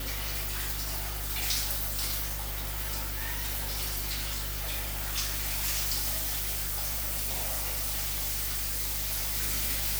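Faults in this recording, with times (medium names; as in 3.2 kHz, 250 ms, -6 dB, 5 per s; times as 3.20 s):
hum 50 Hz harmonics 3 -37 dBFS
6.17–9.37 s: clipped -27.5 dBFS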